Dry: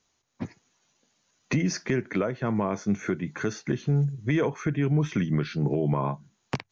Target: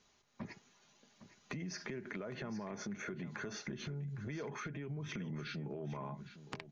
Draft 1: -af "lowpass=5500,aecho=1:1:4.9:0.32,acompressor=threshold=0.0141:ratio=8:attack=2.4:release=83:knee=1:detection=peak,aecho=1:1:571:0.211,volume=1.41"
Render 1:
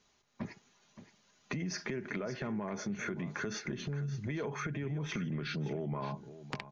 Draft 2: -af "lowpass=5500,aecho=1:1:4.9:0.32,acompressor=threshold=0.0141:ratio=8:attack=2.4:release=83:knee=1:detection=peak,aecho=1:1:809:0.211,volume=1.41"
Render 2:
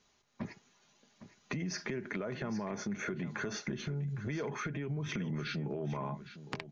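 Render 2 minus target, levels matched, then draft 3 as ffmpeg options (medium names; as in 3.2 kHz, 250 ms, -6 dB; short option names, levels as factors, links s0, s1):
compression: peak gain reduction -5.5 dB
-af "lowpass=5500,aecho=1:1:4.9:0.32,acompressor=threshold=0.00668:ratio=8:attack=2.4:release=83:knee=1:detection=peak,aecho=1:1:809:0.211,volume=1.41"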